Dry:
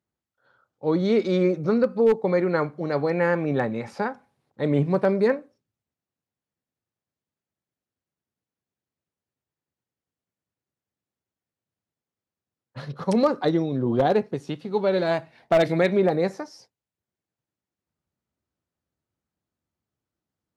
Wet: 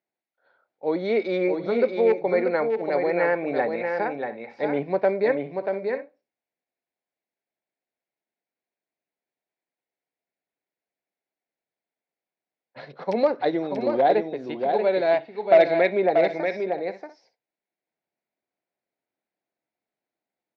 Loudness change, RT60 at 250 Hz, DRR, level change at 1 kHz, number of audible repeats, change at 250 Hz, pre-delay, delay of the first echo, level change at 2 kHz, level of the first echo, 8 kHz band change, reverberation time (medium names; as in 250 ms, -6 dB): 0.0 dB, no reverb, no reverb, +3.0 dB, 2, -4.5 dB, no reverb, 635 ms, +2.0 dB, -5.5 dB, no reading, no reverb